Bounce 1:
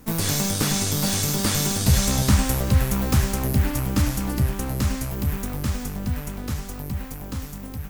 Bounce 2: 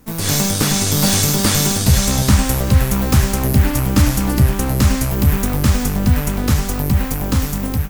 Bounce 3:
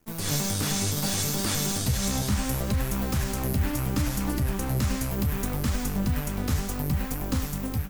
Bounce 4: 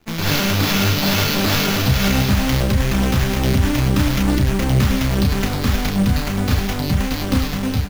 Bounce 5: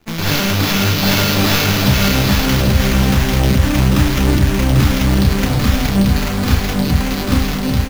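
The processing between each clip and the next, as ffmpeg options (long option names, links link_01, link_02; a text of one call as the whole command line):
ffmpeg -i in.wav -af "dynaudnorm=framelen=170:gausssize=3:maxgain=15.5dB,volume=-1dB" out.wav
ffmpeg -i in.wav -af "alimiter=limit=-7dB:level=0:latency=1:release=42,aeval=exprs='sgn(val(0))*max(abs(val(0))-0.00376,0)':channel_layout=same,flanger=delay=2.6:depth=9:regen=65:speed=0.69:shape=triangular,volume=-5dB" out.wav
ffmpeg -i in.wav -filter_complex "[0:a]asplit=2[link_01][link_02];[link_02]adelay=31,volume=-5dB[link_03];[link_01][link_03]amix=inputs=2:normalize=0,acrusher=samples=5:mix=1:aa=0.000001,volume=8dB" out.wav
ffmpeg -i in.wav -af "aecho=1:1:794:0.631,volume=2dB" out.wav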